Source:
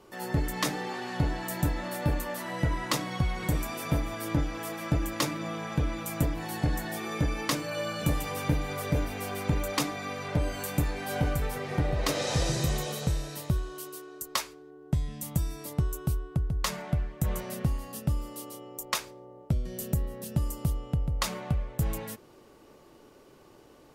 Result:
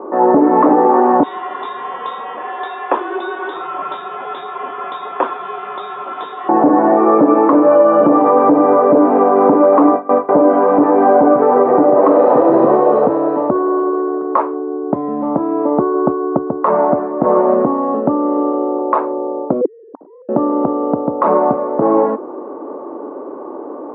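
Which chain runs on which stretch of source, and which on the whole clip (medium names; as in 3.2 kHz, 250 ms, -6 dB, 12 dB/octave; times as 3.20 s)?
1.23–6.49 s: frequency inversion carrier 3.7 kHz + bass shelf 240 Hz -7.5 dB
9.54–10.29 s: high-pass 41 Hz + gate with hold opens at -25 dBFS, closes at -30 dBFS
19.61–20.29 s: formants replaced by sine waves + low-pass 2.3 kHz + inverted gate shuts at -32 dBFS, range -36 dB
whole clip: elliptic band-pass 270–1100 Hz, stop band 70 dB; loudness maximiser +30 dB; trim -1 dB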